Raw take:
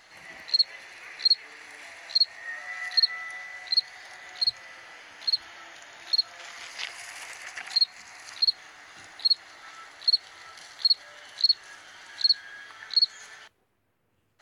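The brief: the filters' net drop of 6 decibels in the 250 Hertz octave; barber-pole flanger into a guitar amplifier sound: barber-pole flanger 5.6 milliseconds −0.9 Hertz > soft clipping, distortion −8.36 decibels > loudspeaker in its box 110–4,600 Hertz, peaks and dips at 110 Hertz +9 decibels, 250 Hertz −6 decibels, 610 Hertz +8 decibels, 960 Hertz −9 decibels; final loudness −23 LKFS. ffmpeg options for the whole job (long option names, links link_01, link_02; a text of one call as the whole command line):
ffmpeg -i in.wav -filter_complex "[0:a]equalizer=frequency=250:width_type=o:gain=-7,asplit=2[link_01][link_02];[link_02]adelay=5.6,afreqshift=-0.9[link_03];[link_01][link_03]amix=inputs=2:normalize=1,asoftclip=threshold=-24.5dB,highpass=110,equalizer=frequency=110:width_type=q:width=4:gain=9,equalizer=frequency=250:width_type=q:width=4:gain=-6,equalizer=frequency=610:width_type=q:width=4:gain=8,equalizer=frequency=960:width_type=q:width=4:gain=-9,lowpass=frequency=4600:width=0.5412,lowpass=frequency=4600:width=1.3066,volume=13dB" out.wav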